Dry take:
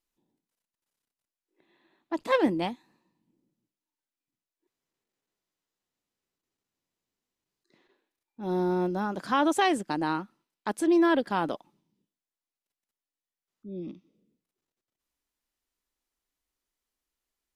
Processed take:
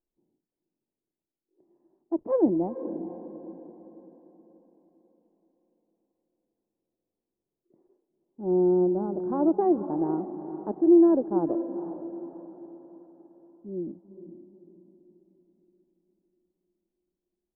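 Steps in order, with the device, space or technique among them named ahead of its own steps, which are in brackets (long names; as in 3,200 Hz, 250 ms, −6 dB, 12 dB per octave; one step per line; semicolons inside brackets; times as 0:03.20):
under water (low-pass filter 740 Hz 24 dB per octave; parametric band 360 Hz +6.5 dB 0.37 octaves)
feedback delay with all-pass diffusion 471 ms, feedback 45%, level −11 dB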